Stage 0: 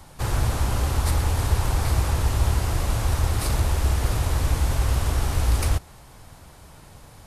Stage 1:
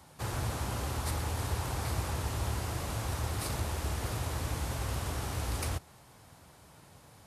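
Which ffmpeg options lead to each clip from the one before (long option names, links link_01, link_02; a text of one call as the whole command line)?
ffmpeg -i in.wav -af "highpass=92,volume=-7.5dB" out.wav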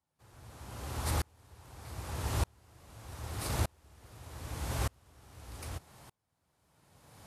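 ffmpeg -i in.wav -af "aeval=exprs='val(0)*pow(10,-37*if(lt(mod(-0.82*n/s,1),2*abs(-0.82)/1000),1-mod(-0.82*n/s,1)/(2*abs(-0.82)/1000),(mod(-0.82*n/s,1)-2*abs(-0.82)/1000)/(1-2*abs(-0.82)/1000))/20)':channel_layout=same,volume=4.5dB" out.wav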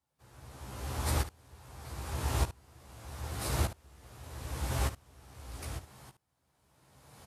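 ffmpeg -i in.wav -af "aecho=1:1:15|72:0.631|0.237" out.wav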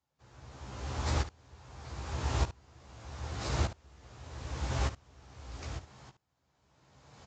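ffmpeg -i in.wav -af "aresample=16000,aresample=44100" out.wav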